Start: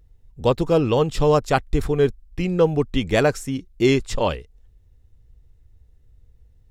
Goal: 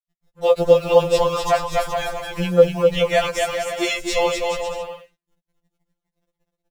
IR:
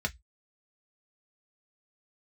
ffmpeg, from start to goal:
-af "lowshelf=frequency=420:width_type=q:width=3:gain=-9.5,acompressor=threshold=-19dB:ratio=2.5,acrusher=bits=7:mix=0:aa=0.5,aecho=1:1:250|425|547.5|633.2|693.3:0.631|0.398|0.251|0.158|0.1,afftfilt=real='re*2.83*eq(mod(b,8),0)':imag='im*2.83*eq(mod(b,8),0)':win_size=2048:overlap=0.75,volume=7dB"

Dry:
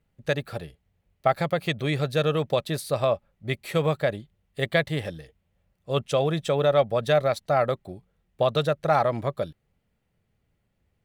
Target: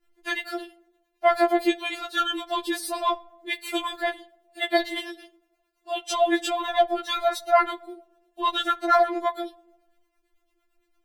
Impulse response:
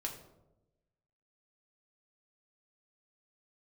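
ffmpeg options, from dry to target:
-filter_complex "[0:a]acrossover=split=530[link_01][link_02];[link_01]aeval=exprs='val(0)*(1-0.7/2+0.7/2*cos(2*PI*8.9*n/s))':channel_layout=same[link_03];[link_02]aeval=exprs='val(0)*(1-0.7/2-0.7/2*cos(2*PI*8.9*n/s))':channel_layout=same[link_04];[link_03][link_04]amix=inputs=2:normalize=0,asplit=2[link_05][link_06];[1:a]atrim=start_sample=2205,lowshelf=frequency=73:gain=-8[link_07];[link_06][link_07]afir=irnorm=-1:irlink=0,volume=-12.5dB[link_08];[link_05][link_08]amix=inputs=2:normalize=0,afftfilt=real='re*4*eq(mod(b,16),0)':imag='im*4*eq(mod(b,16),0)':win_size=2048:overlap=0.75,volume=8.5dB"

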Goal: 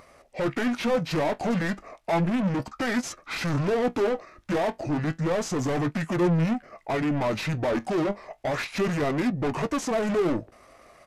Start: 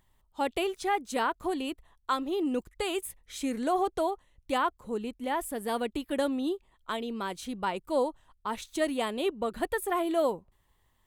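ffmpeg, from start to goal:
ffmpeg -i in.wav -filter_complex "[0:a]asplit=2[link_01][link_02];[link_02]highpass=frequency=720:poles=1,volume=35dB,asoftclip=type=tanh:threshold=-15dB[link_03];[link_01][link_03]amix=inputs=2:normalize=0,lowpass=frequency=2900:poles=1,volume=-6dB,flanger=delay=7:depth=6.8:regen=59:speed=0.32:shape=triangular,asetrate=27781,aresample=44100,atempo=1.5874,volume=1dB" out.wav

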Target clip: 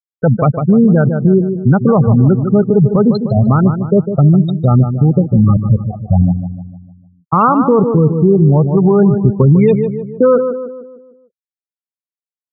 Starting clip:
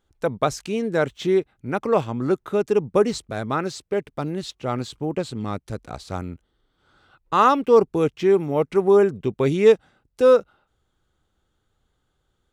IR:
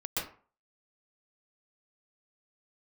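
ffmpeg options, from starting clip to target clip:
-filter_complex "[0:a]highpass=frequency=85:poles=1,bandreject=frequency=1700:width=9.4,afftfilt=real='re*gte(hypot(re,im),0.158)':imag='im*gte(hypot(re,im),0.158)':win_size=1024:overlap=0.75,lowshelf=frequency=230:width_type=q:width=1.5:gain=12,acompressor=threshold=-19dB:ratio=4,asplit=2[link_01][link_02];[link_02]adelay=151,lowpass=frequency=1300:poles=1,volume=-9.5dB,asplit=2[link_03][link_04];[link_04]adelay=151,lowpass=frequency=1300:poles=1,volume=0.5,asplit=2[link_05][link_06];[link_06]adelay=151,lowpass=frequency=1300:poles=1,volume=0.5,asplit=2[link_07][link_08];[link_08]adelay=151,lowpass=frequency=1300:poles=1,volume=0.5,asplit=2[link_09][link_10];[link_10]adelay=151,lowpass=frequency=1300:poles=1,volume=0.5,asplit=2[link_11][link_12];[link_12]adelay=151,lowpass=frequency=1300:poles=1,volume=0.5[link_13];[link_01][link_03][link_05][link_07][link_09][link_11][link_13]amix=inputs=7:normalize=0,alimiter=level_in=16dB:limit=-1dB:release=50:level=0:latency=1,volume=-1dB"

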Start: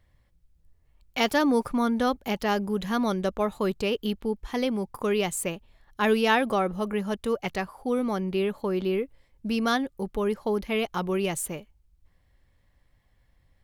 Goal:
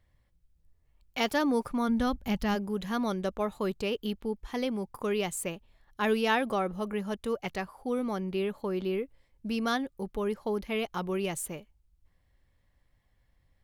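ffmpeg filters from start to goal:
ffmpeg -i in.wav -filter_complex "[0:a]asplit=3[link_01][link_02][link_03];[link_01]afade=type=out:start_time=1.88:duration=0.02[link_04];[link_02]asubboost=boost=7.5:cutoff=180,afade=type=in:start_time=1.88:duration=0.02,afade=type=out:start_time=2.54:duration=0.02[link_05];[link_03]afade=type=in:start_time=2.54:duration=0.02[link_06];[link_04][link_05][link_06]amix=inputs=3:normalize=0,volume=-4.5dB" out.wav

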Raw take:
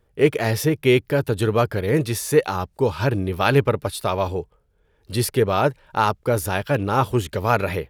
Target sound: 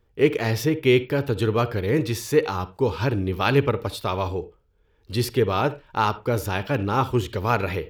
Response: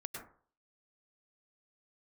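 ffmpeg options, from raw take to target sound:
-filter_complex "[0:a]equalizer=frequency=160:width_type=o:width=0.67:gain=-4,equalizer=frequency=630:width_type=o:width=0.67:gain=-6,equalizer=frequency=1600:width_type=o:width=0.67:gain=-3,equalizer=frequency=10000:width_type=o:width=0.67:gain=-10,asplit=2[link_01][link_02];[1:a]atrim=start_sample=2205,asetrate=88200,aresample=44100,highshelf=frequency=9100:gain=-10.5[link_03];[link_02][link_03]afir=irnorm=-1:irlink=0,volume=-4dB[link_04];[link_01][link_04]amix=inputs=2:normalize=0,volume=-1.5dB"

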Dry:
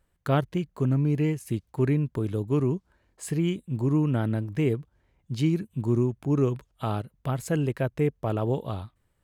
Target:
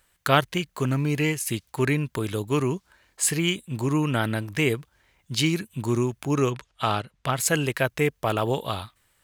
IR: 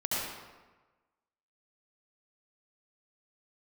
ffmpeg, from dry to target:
-filter_complex "[0:a]tiltshelf=frequency=860:gain=-9,asettb=1/sr,asplit=3[link_01][link_02][link_03];[link_01]atrim=end=6.504[link_04];[link_02]atrim=start=6.5:end=7.37,asetpts=PTS-STARTPTS,afade=type=in:duration=0.004:curve=qsin,afade=type=out:start_time=0.866:duration=0.004:curve=qsin,adynamicsmooth=sensitivity=5.5:basefreq=6200[link_05];[link_03]atrim=start=7.366[link_06];[link_04][link_05]acrossfade=duration=0.004:curve1=hsin:curve2=qsin[link_07];[link_07][link_06]acrossfade=duration=0.004:curve1=qsin:curve2=hsin,volume=7dB"

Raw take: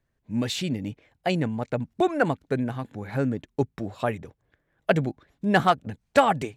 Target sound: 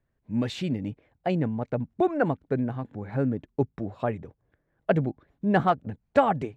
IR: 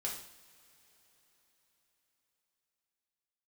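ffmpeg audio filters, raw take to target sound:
-af "asetnsamples=nb_out_samples=441:pad=0,asendcmd='0.9 lowpass f 1000',lowpass=frequency=1800:poles=1"

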